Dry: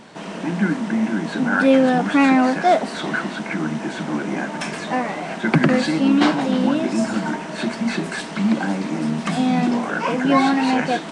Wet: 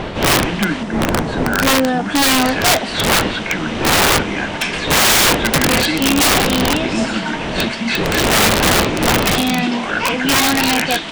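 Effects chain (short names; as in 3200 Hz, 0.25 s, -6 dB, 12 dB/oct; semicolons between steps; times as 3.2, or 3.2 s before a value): wind noise 500 Hz -17 dBFS; bell 3100 Hz +13.5 dB 1.7 oct, from 0.83 s +3.5 dB, from 2.22 s +13.5 dB; wrapped overs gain 7 dB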